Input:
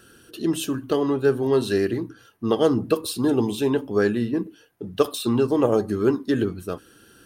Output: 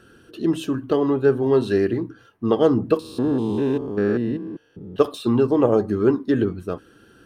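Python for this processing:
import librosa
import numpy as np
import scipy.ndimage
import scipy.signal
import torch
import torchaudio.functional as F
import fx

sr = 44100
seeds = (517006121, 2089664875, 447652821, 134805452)

y = fx.spec_steps(x, sr, hold_ms=200, at=(2.99, 4.99))
y = fx.lowpass(y, sr, hz=1900.0, slope=6)
y = y * 10.0 ** (2.5 / 20.0)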